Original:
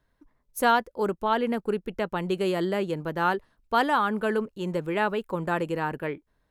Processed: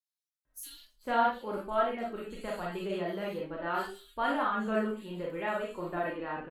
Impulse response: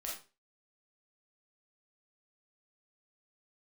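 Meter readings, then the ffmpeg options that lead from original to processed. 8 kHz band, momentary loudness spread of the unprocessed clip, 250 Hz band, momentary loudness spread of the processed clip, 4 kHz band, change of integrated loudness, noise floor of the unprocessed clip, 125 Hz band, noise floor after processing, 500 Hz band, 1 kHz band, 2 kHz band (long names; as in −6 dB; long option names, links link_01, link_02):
−6.0 dB, 8 LU, −7.5 dB, 12 LU, −8.0 dB, −6.0 dB, −73 dBFS, −10.5 dB, below −85 dBFS, −6.5 dB, −6.0 dB, −7.0 dB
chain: -filter_complex "[0:a]acrossover=split=4000[link_01][link_02];[link_01]adelay=450[link_03];[link_03][link_02]amix=inputs=2:normalize=0[link_04];[1:a]atrim=start_sample=2205[link_05];[link_04][link_05]afir=irnorm=-1:irlink=0,flanger=delay=2.7:depth=2.2:regen=52:speed=0.51:shape=triangular,volume=-1.5dB"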